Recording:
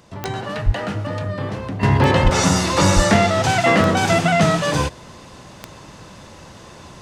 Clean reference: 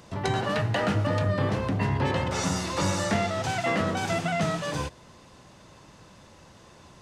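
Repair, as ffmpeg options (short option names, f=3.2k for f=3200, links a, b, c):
-filter_complex "[0:a]adeclick=t=4,asplit=3[a][b][c];[a]afade=t=out:st=0.65:d=0.02[d];[b]highpass=f=140:w=0.5412,highpass=f=140:w=1.3066,afade=t=in:st=0.65:d=0.02,afade=t=out:st=0.77:d=0.02[e];[c]afade=t=in:st=0.77:d=0.02[f];[d][e][f]amix=inputs=3:normalize=0,asplit=3[g][h][i];[g]afade=t=out:st=2.23:d=0.02[j];[h]highpass=f=140:w=0.5412,highpass=f=140:w=1.3066,afade=t=in:st=2.23:d=0.02,afade=t=out:st=2.35:d=0.02[k];[i]afade=t=in:st=2.35:d=0.02[l];[j][k][l]amix=inputs=3:normalize=0,asplit=3[m][n][o];[m]afade=t=out:st=2.95:d=0.02[p];[n]highpass=f=140:w=0.5412,highpass=f=140:w=1.3066,afade=t=in:st=2.95:d=0.02,afade=t=out:st=3.07:d=0.02[q];[o]afade=t=in:st=3.07:d=0.02[r];[p][q][r]amix=inputs=3:normalize=0,asetnsamples=n=441:p=0,asendcmd='1.83 volume volume -11dB',volume=0dB"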